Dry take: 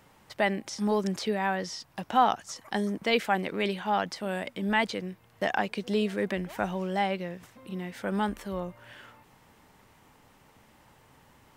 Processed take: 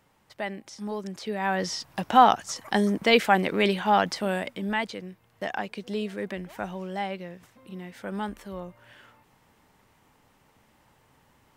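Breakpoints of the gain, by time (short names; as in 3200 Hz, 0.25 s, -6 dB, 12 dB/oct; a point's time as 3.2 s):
1.16 s -6.5 dB
1.65 s +6 dB
4.22 s +6 dB
4.86 s -3.5 dB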